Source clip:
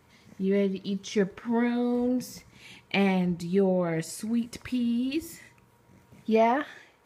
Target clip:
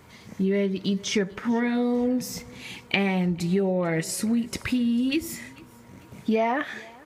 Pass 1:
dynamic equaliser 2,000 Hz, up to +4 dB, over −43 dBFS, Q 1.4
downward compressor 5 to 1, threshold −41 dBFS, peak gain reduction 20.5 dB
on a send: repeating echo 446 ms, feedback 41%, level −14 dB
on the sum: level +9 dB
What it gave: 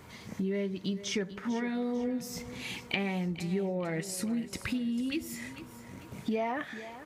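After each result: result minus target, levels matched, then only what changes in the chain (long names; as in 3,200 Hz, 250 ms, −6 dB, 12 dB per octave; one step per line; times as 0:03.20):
downward compressor: peak gain reduction +8.5 dB; echo-to-direct +10 dB
change: downward compressor 5 to 1, threshold −30.5 dBFS, peak gain reduction 12 dB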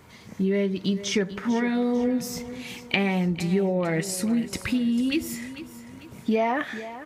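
echo-to-direct +10 dB
change: repeating echo 446 ms, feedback 41%, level −24 dB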